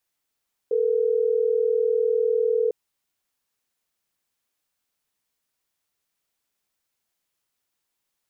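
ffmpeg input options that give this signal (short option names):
-f lavfi -i "aevalsrc='0.0841*(sin(2*PI*440*t)+sin(2*PI*480*t))*clip(min(mod(t,6),2-mod(t,6))/0.005,0,1)':d=3.12:s=44100"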